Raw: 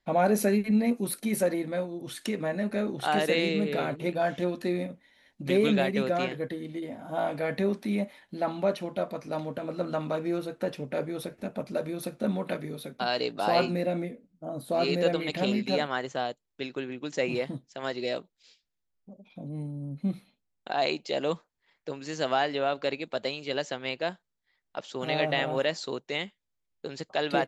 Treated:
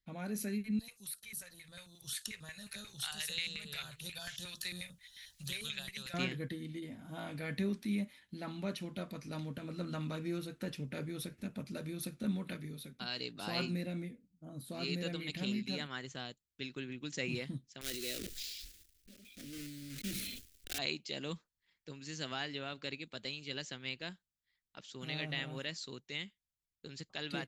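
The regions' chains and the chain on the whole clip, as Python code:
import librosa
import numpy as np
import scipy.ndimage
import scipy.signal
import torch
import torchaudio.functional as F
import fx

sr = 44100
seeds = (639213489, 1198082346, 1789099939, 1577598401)

y = fx.chain(x, sr, fx.tone_stack(knobs='10-0-10'),
    fx.filter_lfo_notch(shape='square', hz=5.6, low_hz=240.0, high_hz=2200.0, q=0.72),
    fx.band_squash(depth_pct=70), at=(0.79, 6.14))
y = fx.chain(y, sr, fx.block_float(bits=3),
    fx.fixed_phaser(hz=390.0, stages=4),
    fx.sustainer(db_per_s=30.0), at=(17.81, 20.79))
y = fx.tone_stack(y, sr, knobs='6-0-2')
y = fx.rider(y, sr, range_db=10, speed_s=2.0)
y = F.gain(torch.from_numpy(y), 10.5).numpy()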